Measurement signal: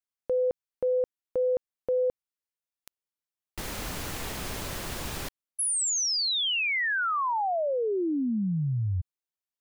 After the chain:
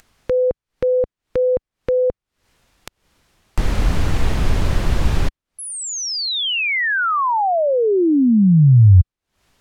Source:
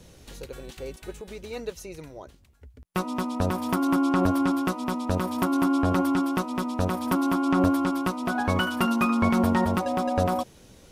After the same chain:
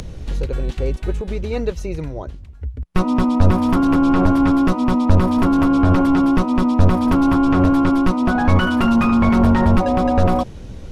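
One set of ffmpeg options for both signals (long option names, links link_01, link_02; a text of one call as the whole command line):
ffmpeg -i in.wav -af "apsyclip=24dB,aemphasis=mode=reproduction:type=bsi,acompressor=mode=upward:threshold=-26dB:ratio=2.5:attack=34:release=169:knee=2.83:detection=peak,volume=-14.5dB" out.wav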